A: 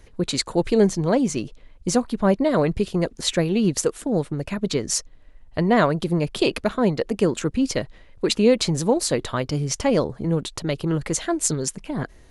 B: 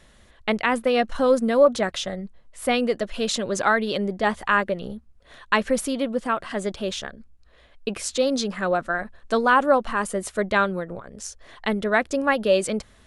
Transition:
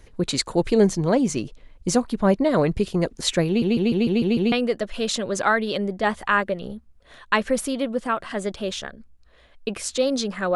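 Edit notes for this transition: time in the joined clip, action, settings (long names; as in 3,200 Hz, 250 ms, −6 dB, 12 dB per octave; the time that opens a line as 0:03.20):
A
0:03.47: stutter in place 0.15 s, 7 plays
0:04.52: continue with B from 0:02.72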